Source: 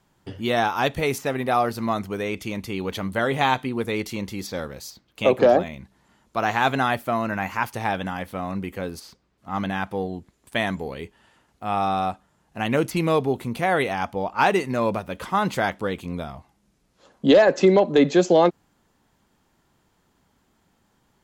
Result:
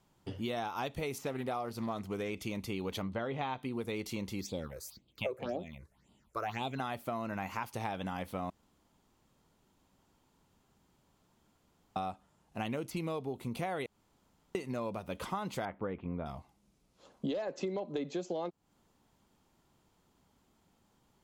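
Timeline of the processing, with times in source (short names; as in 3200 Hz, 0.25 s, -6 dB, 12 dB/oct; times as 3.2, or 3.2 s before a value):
1.19–2.3 Doppler distortion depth 0.14 ms
3.02–3.63 air absorption 170 m
4.41–6.8 phaser stages 6, 1.9 Hz, lowest notch 200–1700 Hz
8.5–11.96 room tone
13.86–14.55 room tone
15.65–16.26 LPF 2100 Hz 24 dB/oct
whole clip: bell 1700 Hz -6 dB 0.48 oct; compressor 12:1, threshold -28 dBFS; gain -5 dB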